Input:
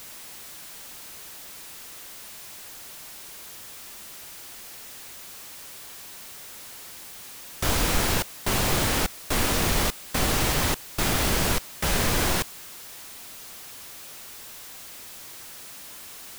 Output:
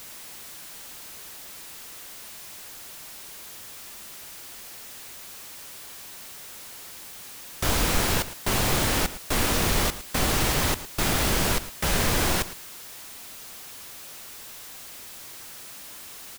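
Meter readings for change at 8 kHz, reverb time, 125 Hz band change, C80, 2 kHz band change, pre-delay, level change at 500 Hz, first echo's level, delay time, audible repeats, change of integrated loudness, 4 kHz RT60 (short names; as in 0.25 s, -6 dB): 0.0 dB, none, 0.0 dB, none, 0.0 dB, none, 0.0 dB, -15.0 dB, 0.111 s, 1, 0.0 dB, none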